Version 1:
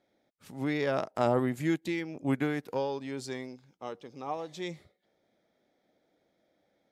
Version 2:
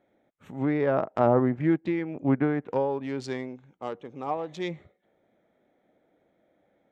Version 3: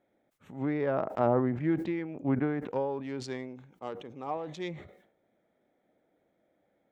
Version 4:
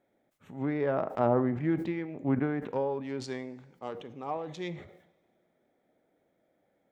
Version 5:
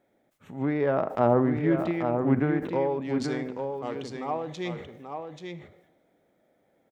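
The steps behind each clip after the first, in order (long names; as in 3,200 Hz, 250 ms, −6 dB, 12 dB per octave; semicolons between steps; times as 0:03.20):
adaptive Wiener filter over 9 samples; treble cut that deepens with the level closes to 1,500 Hz, closed at −27.5 dBFS; level +5.5 dB
level that may fall only so fast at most 84 dB per second; level −5 dB
coupled-rooms reverb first 0.53 s, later 2 s, from −16 dB, DRR 14 dB
single-tap delay 834 ms −6 dB; level +4 dB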